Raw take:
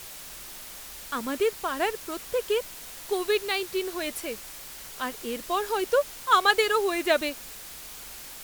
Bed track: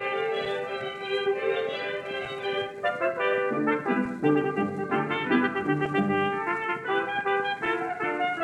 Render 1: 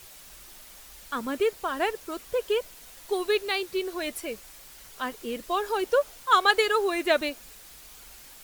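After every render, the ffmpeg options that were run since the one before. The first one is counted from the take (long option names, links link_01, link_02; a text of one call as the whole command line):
ffmpeg -i in.wav -af "afftdn=noise_reduction=7:noise_floor=-42" out.wav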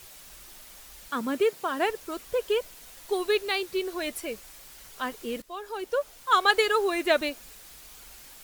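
ffmpeg -i in.wav -filter_complex "[0:a]asettb=1/sr,asplit=3[link_01][link_02][link_03];[link_01]atrim=end=1.084[link_04];[link_02]atrim=start=1.08:end=1.9,asetpts=PTS-STARTPTS,afade=type=in:duration=0.004:curve=qsin,afade=type=out:start_time=0.816:duration=0.004:curve=qsin,highpass=frequency=160:width_type=q:width=1.6[link_05];[link_03]atrim=start=1.896[link_06];[link_04][link_05]acrossfade=duration=0.004:curve1=hsin:curve2=qsin[link_07];[link_07][link_06]acrossfade=duration=0.004:curve1=qsin:curve2=hsin,asplit=2[link_08][link_09];[link_08]atrim=end=5.42,asetpts=PTS-STARTPTS,afade=type=out:start_time=5.416:duration=0.004:curve=hsin:silence=0.188365[link_10];[link_09]atrim=start=5.42,asetpts=PTS-STARTPTS,afade=type=in:duration=1.14:silence=0.188365[link_11];[link_10][link_11]concat=n=2:v=0:a=1" out.wav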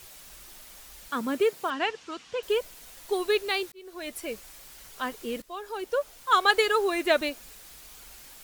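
ffmpeg -i in.wav -filter_complex "[0:a]asettb=1/sr,asplit=3[link_01][link_02][link_03];[link_01]atrim=end=1.704[link_04];[link_02]atrim=start=1.7:end=2.43,asetpts=PTS-STARTPTS,afade=type=in:duration=0.004:curve=qsin,afade=type=out:start_time=0.726:duration=0.004:curve=qsin,highpass=120,equalizer=frequency=380:width_type=q:width=4:gain=-7,equalizer=frequency=580:width_type=q:width=4:gain=-9,equalizer=frequency=2900:width_type=q:width=4:gain=5,lowpass=frequency=6600:width=0.5412,lowpass=frequency=6600:width=1.3066[link_05];[link_03]atrim=start=2.426[link_06];[link_04][link_05]acrossfade=duration=0.004:curve1=hsin:curve2=qsin[link_07];[link_07][link_06]acrossfade=duration=0.004:curve1=qsin:curve2=hsin,asplit=2[link_08][link_09];[link_08]atrim=end=3.72,asetpts=PTS-STARTPTS,afade=type=out:start_time=3.716:duration=0.004:curve=hsin[link_10];[link_09]atrim=start=3.72,asetpts=PTS-STARTPTS,afade=type=in:duration=0.59[link_11];[link_10][link_11]concat=n=2:v=0:a=1" out.wav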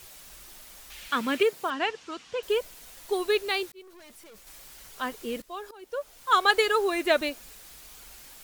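ffmpeg -i in.wav -filter_complex "[0:a]asettb=1/sr,asplit=3[link_01][link_02][link_03];[link_01]atrim=end=0.904[link_04];[link_02]atrim=start=0.9:end=1.43,asetpts=PTS-STARTPTS,afade=type=in:duration=0.004:curve=qsin,afade=type=out:start_time=0.526:duration=0.004:curve=qsin,equalizer=frequency=2600:width=0.89:gain=12[link_05];[link_03]atrim=start=1.426[link_06];[link_04][link_05]acrossfade=duration=0.004:curve1=hsin:curve2=qsin[link_07];[link_07][link_06]acrossfade=duration=0.004:curve1=qsin:curve2=hsin,asettb=1/sr,asplit=3[link_08][link_09][link_10];[link_08]atrim=end=3.824[link_11];[link_09]atrim=start=3.82:end=4.47,asetpts=PTS-STARTPTS,afade=type=in:duration=0.004:curve=qsin,afade=type=out:start_time=0.646:duration=0.004:curve=qsin,aeval=exprs='(tanh(282*val(0)+0.3)-tanh(0.3))/282':channel_layout=same[link_12];[link_10]atrim=start=4.466[link_13];[link_11][link_12]acrossfade=duration=0.004:curve1=hsin:curve2=qsin[link_14];[link_14][link_13]acrossfade=duration=0.004:curve1=qsin:curve2=hsin,asplit=2[link_15][link_16];[link_15]atrim=end=5.71,asetpts=PTS-STARTPTS,afade=type=out:start_time=5.706:duration=0.004:curve=hsin:silence=0.11885[link_17];[link_16]atrim=start=5.71,asetpts=PTS-STARTPTS,afade=type=in:duration=0.59:silence=0.11885[link_18];[link_17][link_18]concat=n=2:v=0:a=1" out.wav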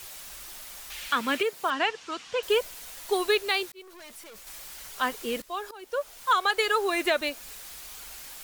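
ffmpeg -i in.wav -filter_complex "[0:a]acrossover=split=570[link_01][link_02];[link_02]acontrast=38[link_03];[link_01][link_03]amix=inputs=2:normalize=0,alimiter=limit=-13.5dB:level=0:latency=1:release=409" out.wav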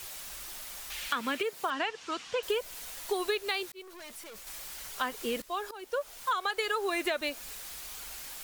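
ffmpeg -i in.wav -af "acompressor=threshold=-28dB:ratio=4" out.wav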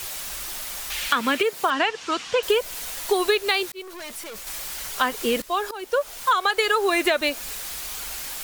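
ffmpeg -i in.wav -af "volume=10dB" out.wav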